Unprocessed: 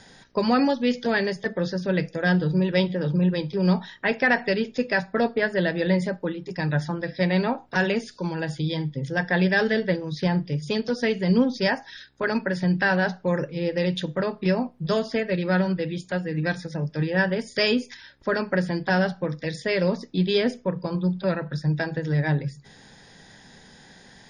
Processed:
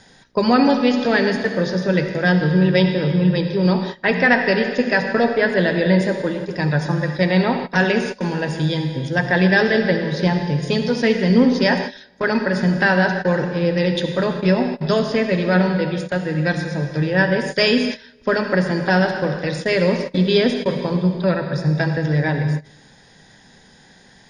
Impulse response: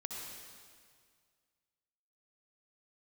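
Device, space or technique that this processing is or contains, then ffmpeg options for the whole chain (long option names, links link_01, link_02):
keyed gated reverb: -filter_complex "[0:a]asplit=3[link_01][link_02][link_03];[1:a]atrim=start_sample=2205[link_04];[link_02][link_04]afir=irnorm=-1:irlink=0[link_05];[link_03]apad=whole_len=1071371[link_06];[link_05][link_06]sidechaingate=range=-22dB:threshold=-37dB:ratio=16:detection=peak,volume=2.5dB[link_07];[link_01][link_07]amix=inputs=2:normalize=0"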